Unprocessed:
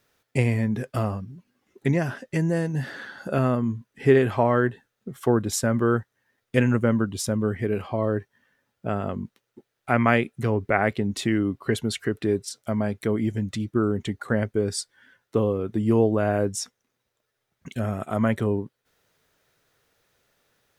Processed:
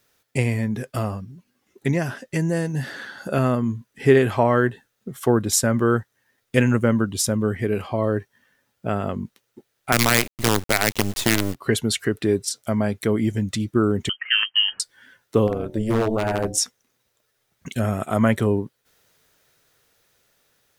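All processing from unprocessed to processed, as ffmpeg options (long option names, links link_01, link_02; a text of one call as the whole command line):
ffmpeg -i in.wav -filter_complex "[0:a]asettb=1/sr,asplit=3[link_01][link_02][link_03];[link_01]atrim=end=9.924[link_04];[link_02]atrim=start=9.92:end=11.55,asetpts=PTS-STARTPTS,afade=type=in:duration=0.004:curve=qsin,afade=type=out:start_time=1.626:duration=0.004:curve=qsin,equalizer=frequency=2500:width_type=o:width=2.3:gain=3.5,acrossover=split=160|3000[link_05][link_06][link_07];[link_06]acompressor=threshold=-20dB:ratio=5:attack=3.2:release=140:knee=2.83:detection=peak[link_08];[link_05][link_08][link_07]amix=inputs=3:normalize=0,acrusher=bits=4:dc=4:mix=0:aa=0.000001[link_09];[link_03]atrim=start=11.546[link_10];[link_04][link_09]acrossfade=duration=0.004:curve1=hsin:curve2=qsin[link_11];[link_11][link_10]acrossfade=duration=0.004:curve1=qsin:curve2=hsin,asettb=1/sr,asplit=3[link_12][link_13][link_14];[link_12]atrim=end=14.094[link_15];[link_13]atrim=start=14.09:end=14.8,asetpts=PTS-STARTPTS,afade=type=in:duration=0.004:curve=qsin,afade=type=out:start_time=0.706:duration=0.004:curve=qsin,highpass=frequency=310:poles=1,lowpass=frequency=2800:width_type=q:width=0.5098,lowpass=frequency=2800:width_type=q:width=0.6013,lowpass=frequency=2800:width_type=q:width=0.9,lowpass=frequency=2800:width_type=q:width=2.563,afreqshift=-3300[link_16];[link_14]atrim=start=14.796[link_17];[link_15][link_16]acrossfade=duration=0.004:curve1=hsin:curve2=qsin[link_18];[link_18][link_17]acrossfade=duration=0.004:curve1=qsin:curve2=hsin,asettb=1/sr,asplit=3[link_19][link_20][link_21];[link_19]atrim=end=15.474[link_22];[link_20]atrim=start=15.47:end=16.58,asetpts=PTS-STARTPTS,afade=type=in:duration=0.004:curve=qsin,afade=type=out:start_time=1.106:duration=0.004:curve=qsin,bandreject=frequency=74.12:width_type=h:width=4,bandreject=frequency=148.24:width_type=h:width=4,bandreject=frequency=222.36:width_type=h:width=4,bandreject=frequency=296.48:width_type=h:width=4,bandreject=frequency=370.6:width_type=h:width=4,bandreject=frequency=444.72:width_type=h:width=4,bandreject=frequency=518.84:width_type=h:width=4,bandreject=frequency=592.96:width_type=h:width=4,bandreject=frequency=667.08:width_type=h:width=4,bandreject=frequency=741.2:width_type=h:width=4,bandreject=frequency=815.32:width_type=h:width=4,bandreject=frequency=889.44:width_type=h:width=4,tremolo=f=220:d=0.824,aeval=exprs='0.141*(abs(mod(val(0)/0.141+3,4)-2)-1)':channel_layout=same[link_23];[link_21]atrim=start=16.576[link_24];[link_22][link_23]acrossfade=duration=0.004:curve1=hsin:curve2=qsin[link_25];[link_25][link_24]acrossfade=duration=0.004:curve1=qsin:curve2=hsin,highshelf=frequency=3800:gain=7,dynaudnorm=framelen=830:gausssize=7:maxgain=5dB" out.wav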